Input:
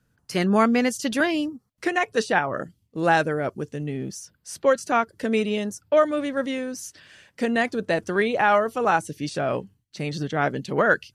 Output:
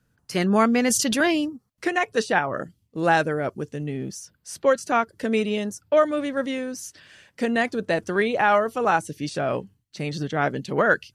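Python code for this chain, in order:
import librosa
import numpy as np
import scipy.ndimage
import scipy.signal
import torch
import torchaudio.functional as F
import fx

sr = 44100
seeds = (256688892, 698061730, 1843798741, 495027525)

y = fx.sustainer(x, sr, db_per_s=27.0, at=(0.84, 1.45))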